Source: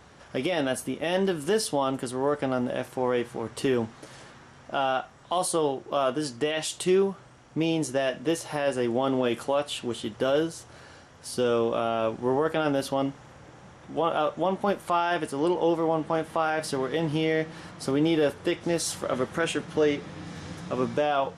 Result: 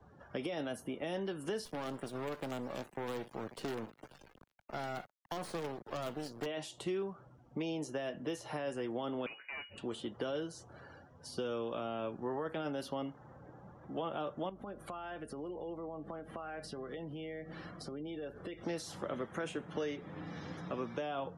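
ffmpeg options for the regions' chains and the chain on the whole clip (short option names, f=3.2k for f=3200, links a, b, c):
-filter_complex "[0:a]asettb=1/sr,asplit=3[a][b][c];[a]atrim=end=1.654[d];[b]atrim=start=1.65:end=6.46,asetpts=PTS-STARTPTS,afade=t=in:d=0.004:c=qsin,afade=t=out:st=4.806:d=0.004:c=qsin,aeval=exprs='val(0)+0.00224*(sin(2*PI*50*n/s)+sin(2*PI*2*50*n/s)/2+sin(2*PI*3*50*n/s)/3+sin(2*PI*4*50*n/s)/4+sin(2*PI*5*50*n/s)/5)':c=same,acrusher=bits=4:dc=4:mix=0:aa=0.000001,asoftclip=type=hard:threshold=-21dB[e];[c]atrim=start=6.456[f];[d][e]acrossfade=d=0.004:c1=hsin:c2=qsin[g];[g][f]acrossfade=d=0.004:c1=qsin:c2=hsin,asettb=1/sr,asplit=3[h][i][j];[h]atrim=end=9.264[k];[i]atrim=start=9.26:end=9.78,asetpts=PTS-STARTPTS,afade=t=in:d=0.004:c=qsin,afade=t=out:st=0.516:d=0.004:c=qsin,highpass=f=380:w=0.5412,highpass=f=380:w=1.3066,aeval=exprs='(tanh(20*val(0)+0.65)-tanh(0.65))/20':c=same,lowpass=f=2.5k:t=q:w=0.5098,lowpass=f=2.5k:t=q:w=0.6013,lowpass=f=2.5k:t=q:w=0.9,lowpass=f=2.5k:t=q:w=2.563,afreqshift=-2900[l];[j]atrim=start=9.776[m];[k][l]acrossfade=d=0.004:c1=hsin:c2=qsin[n];[n][m]acrossfade=d=0.004:c1=qsin:c2=hsin,asettb=1/sr,asplit=3[o][p][q];[o]atrim=end=14.494[r];[p]atrim=start=14.49:end=18.61,asetpts=PTS-STARTPTS,afade=t=in:d=0.004:c=qsin,afade=t=out:st=4.116:d=0.004:c=qsin,bandreject=f=910:w=7,acompressor=threshold=-36dB:ratio=6:attack=3.2:release=140:knee=1:detection=peak,aeval=exprs='val(0)+0.00178*(sin(2*PI*50*n/s)+sin(2*PI*2*50*n/s)/2+sin(2*PI*3*50*n/s)/3+sin(2*PI*4*50*n/s)/4+sin(2*PI*5*50*n/s)/5)':c=same[s];[q]atrim=start=18.606[t];[r][s]acrossfade=d=0.004:c1=hsin:c2=qsin[u];[u][t]acrossfade=d=0.004:c1=qsin:c2=hsin,afftdn=nr=22:nf=-49,equalizer=f=8.5k:t=o:w=0.4:g=-3.5,acrossover=split=120|370|1300|6100[v][w][x][y][z];[v]acompressor=threshold=-58dB:ratio=4[aa];[w]acompressor=threshold=-39dB:ratio=4[ab];[x]acompressor=threshold=-38dB:ratio=4[ac];[y]acompressor=threshold=-46dB:ratio=4[ad];[z]acompressor=threshold=-54dB:ratio=4[ae];[aa][ab][ac][ad][ae]amix=inputs=5:normalize=0,volume=-3.5dB"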